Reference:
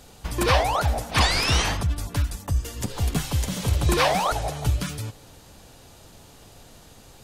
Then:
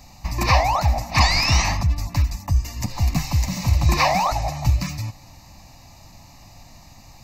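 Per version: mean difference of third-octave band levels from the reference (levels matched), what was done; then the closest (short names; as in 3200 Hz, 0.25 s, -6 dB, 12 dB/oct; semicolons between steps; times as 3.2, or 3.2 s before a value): 4.0 dB: fixed phaser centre 2200 Hz, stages 8; gain +5 dB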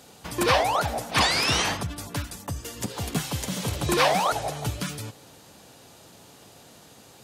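1.0 dB: HPF 140 Hz 12 dB/oct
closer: second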